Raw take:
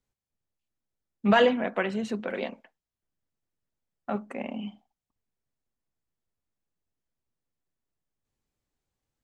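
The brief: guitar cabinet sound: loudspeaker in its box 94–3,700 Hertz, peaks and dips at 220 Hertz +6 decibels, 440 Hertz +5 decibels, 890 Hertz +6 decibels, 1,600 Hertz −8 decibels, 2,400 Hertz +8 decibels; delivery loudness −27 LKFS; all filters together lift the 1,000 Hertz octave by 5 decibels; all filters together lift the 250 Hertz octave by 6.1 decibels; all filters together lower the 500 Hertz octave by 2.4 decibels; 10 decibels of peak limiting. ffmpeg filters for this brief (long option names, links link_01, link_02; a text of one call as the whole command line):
ffmpeg -i in.wav -af "equalizer=frequency=250:width_type=o:gain=3.5,equalizer=frequency=500:width_type=o:gain=-8.5,equalizer=frequency=1000:width_type=o:gain=5.5,alimiter=limit=-18.5dB:level=0:latency=1,highpass=94,equalizer=frequency=220:width_type=q:width=4:gain=6,equalizer=frequency=440:width_type=q:width=4:gain=5,equalizer=frequency=890:width_type=q:width=4:gain=6,equalizer=frequency=1600:width_type=q:width=4:gain=-8,equalizer=frequency=2400:width_type=q:width=4:gain=8,lowpass=frequency=3700:width=0.5412,lowpass=frequency=3700:width=1.3066,volume=1dB" out.wav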